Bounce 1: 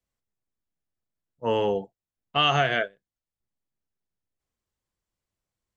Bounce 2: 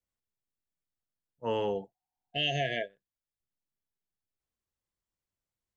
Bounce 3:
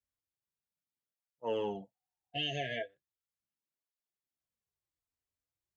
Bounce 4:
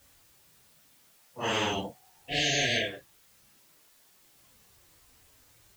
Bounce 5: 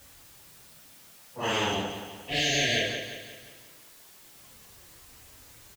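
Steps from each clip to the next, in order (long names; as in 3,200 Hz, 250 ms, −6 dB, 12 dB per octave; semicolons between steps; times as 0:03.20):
healed spectral selection 0:01.97–0:02.87, 720–1,600 Hz before; level −6.5 dB
through-zero flanger with one copy inverted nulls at 0.38 Hz, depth 6.1 ms; level −2 dB
random phases in long frames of 100 ms; every bin compressed towards the loudest bin 4 to 1; level +8 dB
mu-law and A-law mismatch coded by mu; repeating echo 176 ms, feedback 49%, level −9 dB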